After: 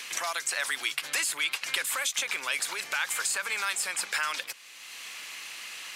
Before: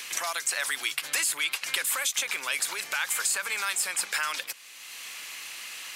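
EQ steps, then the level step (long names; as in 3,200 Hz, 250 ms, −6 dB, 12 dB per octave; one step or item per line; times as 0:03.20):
high-shelf EQ 9,900 Hz −8 dB
0.0 dB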